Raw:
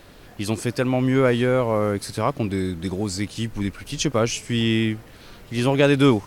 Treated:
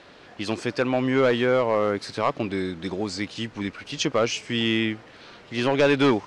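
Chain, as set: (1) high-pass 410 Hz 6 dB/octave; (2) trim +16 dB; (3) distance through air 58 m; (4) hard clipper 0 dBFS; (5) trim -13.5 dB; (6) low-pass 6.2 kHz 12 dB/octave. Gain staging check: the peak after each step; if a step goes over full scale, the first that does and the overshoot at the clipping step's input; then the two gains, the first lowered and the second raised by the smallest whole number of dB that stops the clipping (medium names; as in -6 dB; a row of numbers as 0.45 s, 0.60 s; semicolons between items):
-6.0 dBFS, +10.0 dBFS, +9.5 dBFS, 0.0 dBFS, -13.5 dBFS, -13.0 dBFS; step 2, 9.5 dB; step 2 +6 dB, step 5 -3.5 dB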